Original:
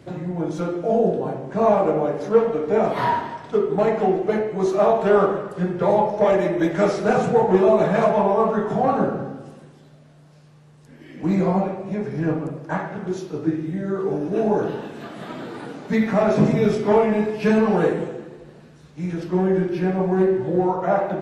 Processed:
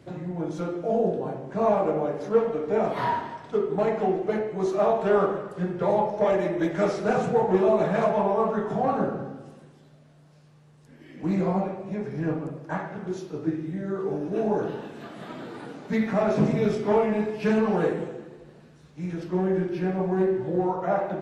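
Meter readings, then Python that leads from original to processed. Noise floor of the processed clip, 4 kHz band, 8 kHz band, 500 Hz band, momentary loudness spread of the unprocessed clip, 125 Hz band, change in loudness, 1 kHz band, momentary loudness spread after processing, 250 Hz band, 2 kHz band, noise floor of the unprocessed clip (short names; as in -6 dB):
-54 dBFS, -5.0 dB, n/a, -5.0 dB, 11 LU, -5.0 dB, -5.0 dB, -5.0 dB, 11 LU, -5.0 dB, -5.0 dB, -49 dBFS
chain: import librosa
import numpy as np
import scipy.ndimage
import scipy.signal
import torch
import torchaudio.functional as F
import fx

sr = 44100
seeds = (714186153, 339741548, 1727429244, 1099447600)

y = fx.doppler_dist(x, sr, depth_ms=0.12)
y = y * librosa.db_to_amplitude(-5.0)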